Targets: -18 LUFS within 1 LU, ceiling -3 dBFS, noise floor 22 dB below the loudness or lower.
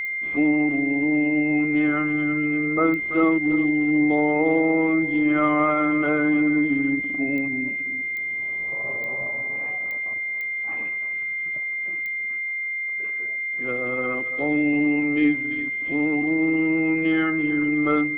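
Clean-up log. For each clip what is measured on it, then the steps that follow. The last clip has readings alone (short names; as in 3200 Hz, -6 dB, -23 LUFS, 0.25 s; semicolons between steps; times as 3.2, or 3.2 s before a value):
clicks 8; steady tone 2100 Hz; tone level -25 dBFS; loudness -22.0 LUFS; peak -8.5 dBFS; loudness target -18.0 LUFS
-> de-click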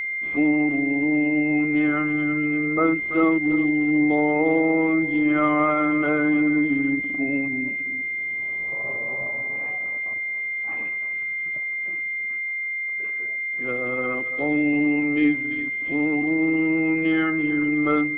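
clicks 0; steady tone 2100 Hz; tone level -25 dBFS
-> notch 2100 Hz, Q 30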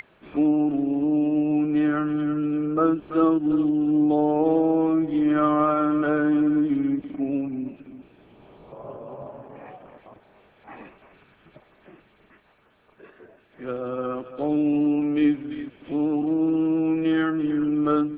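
steady tone none; loudness -23.0 LUFS; peak -9.0 dBFS; loudness target -18.0 LUFS
-> gain +5 dB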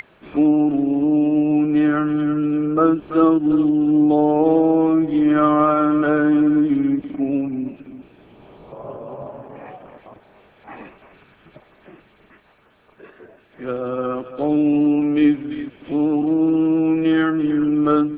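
loudness -18.0 LUFS; peak -4.0 dBFS; noise floor -54 dBFS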